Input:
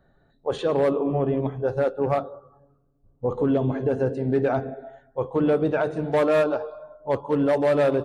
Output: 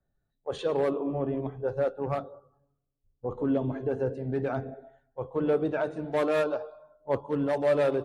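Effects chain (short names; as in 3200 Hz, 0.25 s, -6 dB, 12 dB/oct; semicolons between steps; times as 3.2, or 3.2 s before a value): phaser 0.42 Hz, delay 3.6 ms, feedback 23%; three-band expander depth 40%; gain -6 dB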